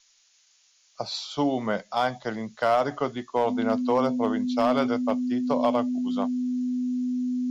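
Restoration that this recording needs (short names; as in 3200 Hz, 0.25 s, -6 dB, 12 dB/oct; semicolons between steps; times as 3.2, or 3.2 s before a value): clip repair -14 dBFS; notch 250 Hz, Q 30; noise print and reduce 9 dB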